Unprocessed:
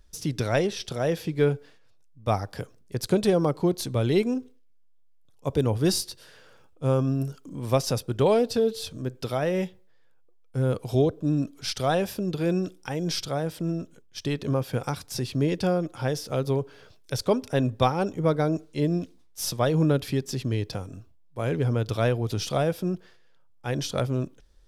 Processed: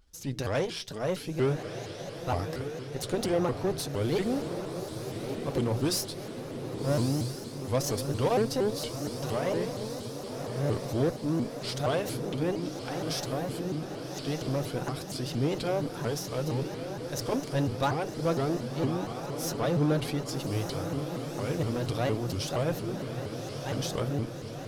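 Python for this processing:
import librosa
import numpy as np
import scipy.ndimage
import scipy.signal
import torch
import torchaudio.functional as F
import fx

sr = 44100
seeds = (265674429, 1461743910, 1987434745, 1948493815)

p1 = fx.transient(x, sr, attack_db=-2, sustain_db=4)
p2 = fx.hum_notches(p1, sr, base_hz=60, count=3)
p3 = fx.notch_comb(p2, sr, f0_hz=200.0)
p4 = fx.cheby_harmonics(p3, sr, harmonics=(8,), levels_db=(-23,), full_scale_db=-11.0)
p5 = p4 + fx.echo_diffused(p4, sr, ms=1183, feedback_pct=66, wet_db=-7.0, dry=0)
p6 = fx.vibrato_shape(p5, sr, shape='saw_up', rate_hz=4.3, depth_cents=250.0)
y = F.gain(torch.from_numpy(p6), -4.0).numpy()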